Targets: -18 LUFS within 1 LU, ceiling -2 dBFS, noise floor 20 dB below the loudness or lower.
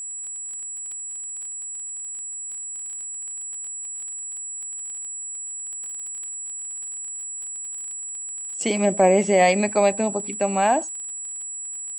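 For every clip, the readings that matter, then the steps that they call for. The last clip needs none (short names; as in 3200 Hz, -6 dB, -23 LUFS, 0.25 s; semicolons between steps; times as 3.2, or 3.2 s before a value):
ticks 24/s; steady tone 7800 Hz; tone level -30 dBFS; loudness -25.5 LUFS; peak -6.0 dBFS; loudness target -18.0 LUFS
-> de-click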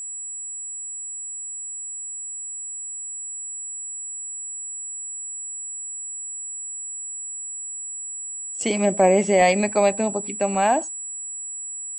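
ticks 0.083/s; steady tone 7800 Hz; tone level -30 dBFS
-> notch 7800 Hz, Q 30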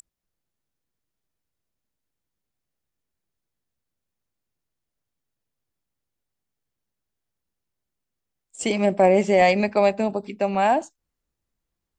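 steady tone none; loudness -20.5 LUFS; peak -6.5 dBFS; loudness target -18.0 LUFS
-> gain +2.5 dB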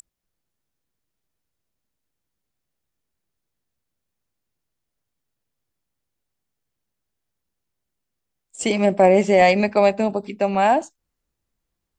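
loudness -18.0 LUFS; peak -4.0 dBFS; noise floor -81 dBFS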